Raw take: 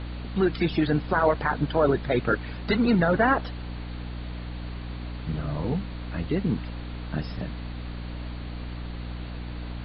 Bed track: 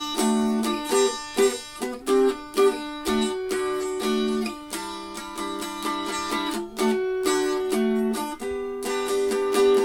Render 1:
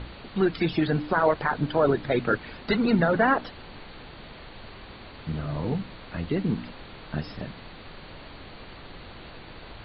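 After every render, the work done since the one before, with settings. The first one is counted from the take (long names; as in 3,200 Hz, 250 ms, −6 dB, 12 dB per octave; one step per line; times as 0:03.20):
hum removal 60 Hz, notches 5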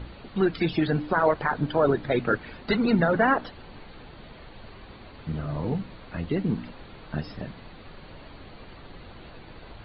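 broadband denoise 6 dB, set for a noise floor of −45 dBFS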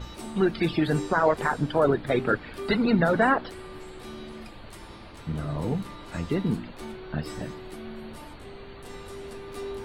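mix in bed track −17.5 dB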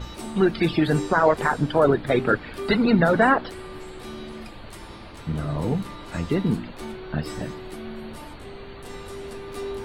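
level +3.5 dB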